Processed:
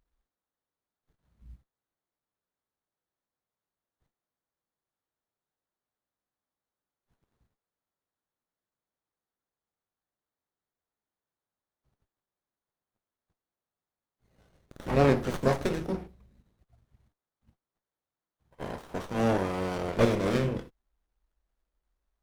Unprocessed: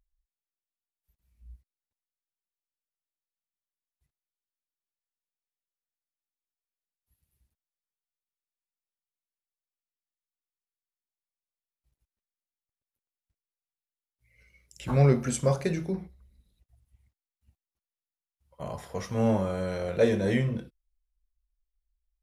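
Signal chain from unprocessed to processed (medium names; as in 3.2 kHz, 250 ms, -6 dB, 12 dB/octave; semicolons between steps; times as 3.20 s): spectral peaks clipped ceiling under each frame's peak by 14 dB; sliding maximum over 17 samples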